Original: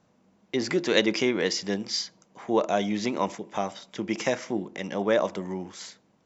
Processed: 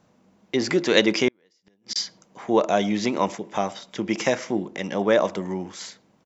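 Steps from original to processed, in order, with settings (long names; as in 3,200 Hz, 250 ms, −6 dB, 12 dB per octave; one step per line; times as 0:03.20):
far-end echo of a speakerphone 110 ms, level −26 dB
0:01.28–0:01.96: gate with flip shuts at −22 dBFS, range −41 dB
level +4 dB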